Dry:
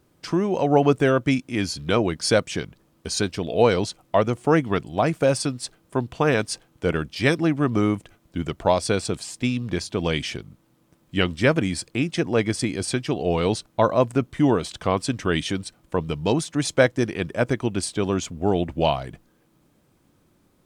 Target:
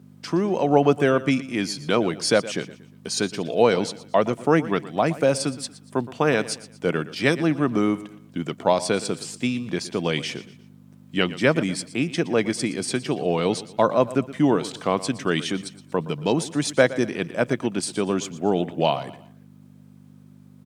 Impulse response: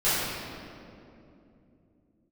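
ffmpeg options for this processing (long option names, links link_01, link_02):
-af "aeval=exprs='val(0)+0.0126*(sin(2*PI*50*n/s)+sin(2*PI*2*50*n/s)/2+sin(2*PI*3*50*n/s)/3+sin(2*PI*4*50*n/s)/4+sin(2*PI*5*50*n/s)/5)':channel_layout=same,highpass=frequency=140:width=0.5412,highpass=frequency=140:width=1.3066,aecho=1:1:118|236|354:0.15|0.0554|0.0205"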